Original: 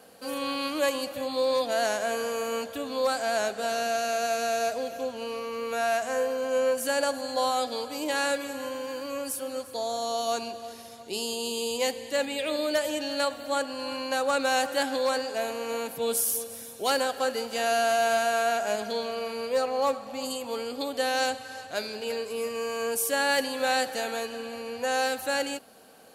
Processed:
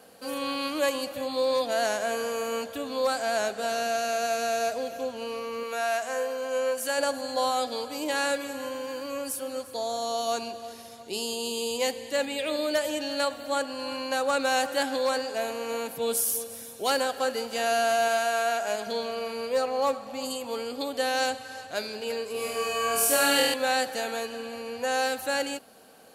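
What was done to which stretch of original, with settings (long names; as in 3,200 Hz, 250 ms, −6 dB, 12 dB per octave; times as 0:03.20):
0:05.63–0:06.98: low-shelf EQ 270 Hz −11.5 dB
0:18.08–0:18.87: low-shelf EQ 230 Hz −9 dB
0:22.32–0:23.54: flutter between parallel walls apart 4.2 metres, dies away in 1.2 s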